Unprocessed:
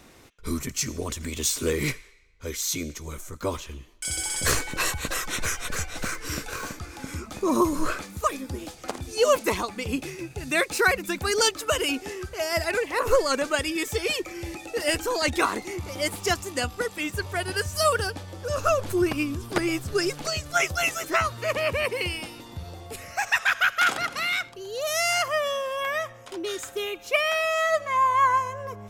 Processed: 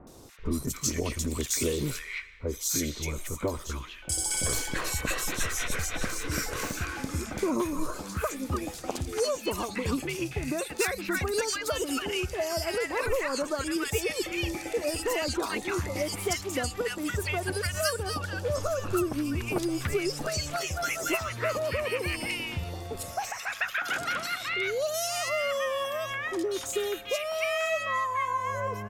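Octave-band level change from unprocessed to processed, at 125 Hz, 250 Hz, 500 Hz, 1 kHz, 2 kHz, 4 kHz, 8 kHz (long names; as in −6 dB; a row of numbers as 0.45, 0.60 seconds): 0.0, −1.5, −3.0, −6.5, −5.5, −4.5, −2.0 decibels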